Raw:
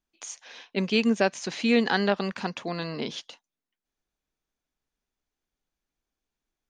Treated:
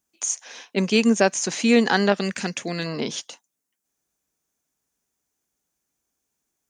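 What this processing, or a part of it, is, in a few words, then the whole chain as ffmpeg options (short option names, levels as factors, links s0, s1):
budget condenser microphone: -filter_complex "[0:a]highpass=82,highshelf=f=5300:t=q:w=1.5:g=8.5,asettb=1/sr,asplit=3[s0][s1][s2];[s0]atrim=end=2.124[s3];[s1]atrim=start=2.12:end=2.86,asetpts=PTS-STARTPTS,afade=t=in:d=0.004:c=qsin,afade=t=out:st=0.736:d=0.004:c=qsin,equalizer=f=1000:t=o:w=1:g=-11,equalizer=f=2000:t=o:w=1:g=6,equalizer=f=8000:t=o:w=1:g=4[s4];[s2]atrim=start=2.856[s5];[s3][s4]acrossfade=d=0.004:c1=hsin:c2=qsin[s6];[s6][s5]acrossfade=d=0.004:c1=qsin:c2=hsin,volume=1.78"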